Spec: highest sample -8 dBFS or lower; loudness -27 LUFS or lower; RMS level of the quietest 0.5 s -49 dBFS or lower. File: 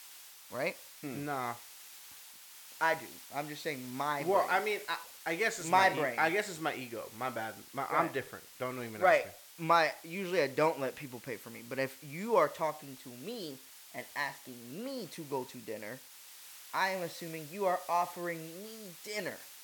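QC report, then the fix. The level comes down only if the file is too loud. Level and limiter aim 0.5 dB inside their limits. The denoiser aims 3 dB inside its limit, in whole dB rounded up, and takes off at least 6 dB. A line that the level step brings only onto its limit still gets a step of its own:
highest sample -12.5 dBFS: OK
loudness -34.0 LUFS: OK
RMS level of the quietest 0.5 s -53 dBFS: OK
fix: none

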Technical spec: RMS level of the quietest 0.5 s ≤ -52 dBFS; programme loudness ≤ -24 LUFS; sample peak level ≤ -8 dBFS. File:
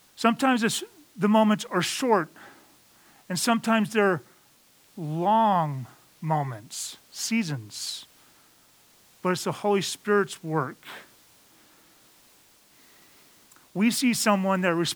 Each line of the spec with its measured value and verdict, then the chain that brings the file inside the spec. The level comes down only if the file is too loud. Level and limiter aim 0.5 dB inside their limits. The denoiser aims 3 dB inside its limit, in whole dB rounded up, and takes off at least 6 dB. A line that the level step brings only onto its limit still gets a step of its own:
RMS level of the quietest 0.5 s -59 dBFS: OK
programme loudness -25.5 LUFS: OK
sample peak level -5.0 dBFS: fail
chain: limiter -8.5 dBFS

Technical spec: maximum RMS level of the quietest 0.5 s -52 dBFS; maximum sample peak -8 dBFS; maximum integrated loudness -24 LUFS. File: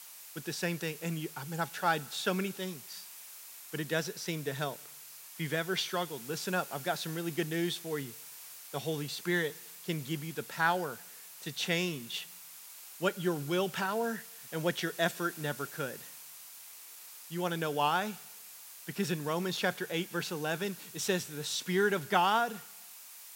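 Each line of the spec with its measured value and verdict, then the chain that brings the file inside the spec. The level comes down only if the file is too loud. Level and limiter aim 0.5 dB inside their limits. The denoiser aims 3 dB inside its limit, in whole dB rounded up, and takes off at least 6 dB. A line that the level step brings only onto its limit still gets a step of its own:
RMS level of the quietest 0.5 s -51 dBFS: fail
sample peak -12.5 dBFS: OK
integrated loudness -34.0 LUFS: OK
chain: denoiser 6 dB, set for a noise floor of -51 dBFS

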